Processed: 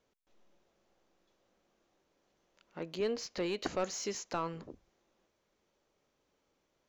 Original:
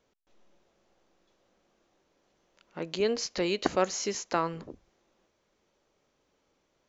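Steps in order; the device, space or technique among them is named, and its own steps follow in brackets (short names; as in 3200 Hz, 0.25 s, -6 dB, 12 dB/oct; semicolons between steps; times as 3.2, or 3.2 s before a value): saturation between pre-emphasis and de-emphasis (high shelf 2700 Hz +11 dB; soft clip -19 dBFS, distortion -13 dB; high shelf 2700 Hz -11 dB); 2.82–3.62 high shelf 5500 Hz -6 dB; gain -4.5 dB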